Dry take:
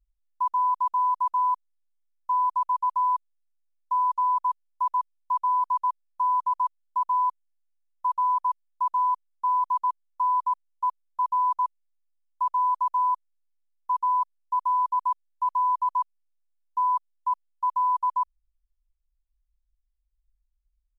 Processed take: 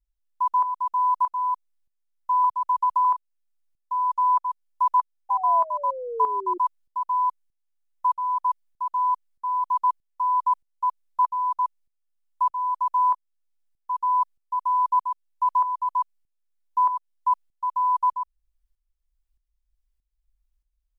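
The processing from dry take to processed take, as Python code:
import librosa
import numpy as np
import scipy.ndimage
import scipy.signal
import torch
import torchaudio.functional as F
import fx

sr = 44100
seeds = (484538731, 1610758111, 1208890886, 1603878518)

p1 = fx.rider(x, sr, range_db=10, speed_s=0.5)
p2 = x + (p1 * 10.0 ** (-2.5 / 20.0))
p3 = fx.spec_paint(p2, sr, seeds[0], shape='fall', start_s=5.29, length_s=1.29, low_hz=350.0, high_hz=810.0, level_db=-30.0)
p4 = fx.tremolo_shape(p3, sr, shape='saw_up', hz=1.6, depth_pct=70)
y = fx.band_squash(p4, sr, depth_pct=100, at=(2.44, 3.05))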